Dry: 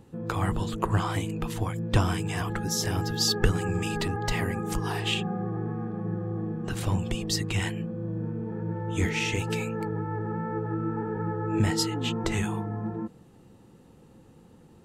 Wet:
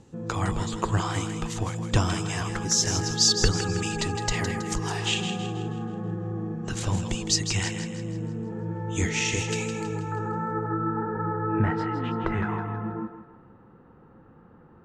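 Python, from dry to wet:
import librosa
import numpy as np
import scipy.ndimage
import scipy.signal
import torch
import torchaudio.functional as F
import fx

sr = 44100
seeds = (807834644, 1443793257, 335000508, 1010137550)

y = fx.lowpass_res(x, sr, hz=fx.steps((0.0, 6800.0), (10.12, 1400.0)), q=2.9)
y = fx.echo_thinned(y, sr, ms=161, feedback_pct=46, hz=420.0, wet_db=-8)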